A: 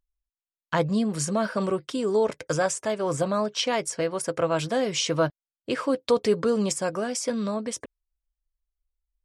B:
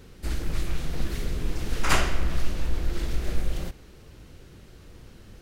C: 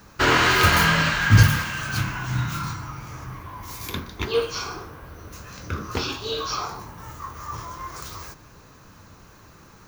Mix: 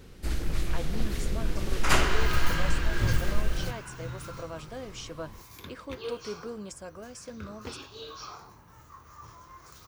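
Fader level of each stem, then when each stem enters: -15.5, -1.0, -14.5 dB; 0.00, 0.00, 1.70 s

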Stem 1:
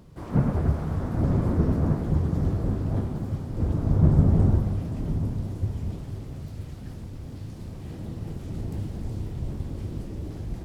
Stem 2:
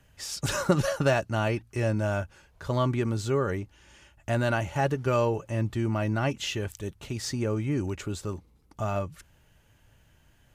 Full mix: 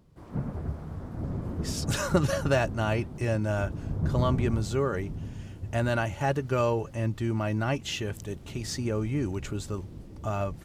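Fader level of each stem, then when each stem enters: -10.0, -1.0 dB; 0.00, 1.45 s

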